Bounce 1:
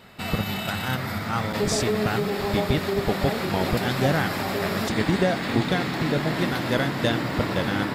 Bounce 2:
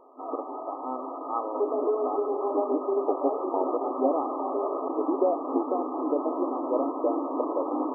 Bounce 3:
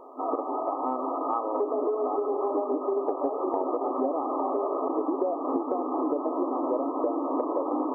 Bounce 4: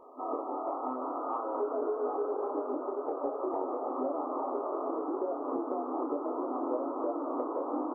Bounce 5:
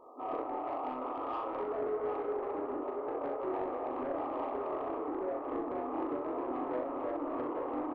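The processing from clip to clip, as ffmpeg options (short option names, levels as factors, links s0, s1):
-af "afftfilt=real='re*between(b*sr/4096,250,1300)':imag='im*between(b*sr/4096,250,1300)':win_size=4096:overlap=0.75"
-af "acompressor=threshold=0.0251:ratio=6,volume=2.37"
-filter_complex "[0:a]asplit=2[s0][s1];[s1]adelay=24,volume=0.631[s2];[s0][s2]amix=inputs=2:normalize=0,asplit=8[s3][s4][s5][s6][s7][s8][s9][s10];[s4]adelay=180,afreqshift=50,volume=0.282[s11];[s5]adelay=360,afreqshift=100,volume=0.17[s12];[s6]adelay=540,afreqshift=150,volume=0.101[s13];[s7]adelay=720,afreqshift=200,volume=0.061[s14];[s8]adelay=900,afreqshift=250,volume=0.0367[s15];[s9]adelay=1080,afreqshift=300,volume=0.0219[s16];[s10]adelay=1260,afreqshift=350,volume=0.0132[s17];[s3][s11][s12][s13][s14][s15][s16][s17]amix=inputs=8:normalize=0,volume=0.422"
-af "asoftclip=type=tanh:threshold=0.0376,aecho=1:1:40|64:0.501|0.422,volume=0.75"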